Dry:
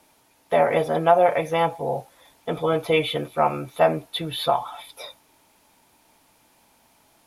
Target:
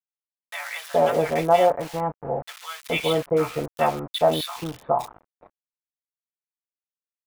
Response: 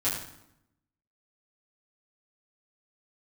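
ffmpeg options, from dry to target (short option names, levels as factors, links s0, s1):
-filter_complex "[0:a]asettb=1/sr,asplit=3[s0][s1][s2];[s0]atrim=end=1.304[s3];[s1]atrim=start=1.3:end=1.87,asetpts=PTS-STARTPTS,afade=t=in:d=0.004:c=qsin,afade=t=out:st=0.566:d=0.004:c=qsin,equalizer=f=530:w=1.1:g=-6.5[s4];[s2]atrim=start=1.866[s5];[s3][s4]acrossfade=d=0.004:c1=hsin:c2=qsin[s6];[s6][s5]acrossfade=d=0.004:c1=qsin:c2=hsin,aeval=exprs='val(0)*gte(abs(val(0)),0.0282)':c=same,acrossover=split=1300[s7][s8];[s7]adelay=420[s9];[s9][s8]amix=inputs=2:normalize=0"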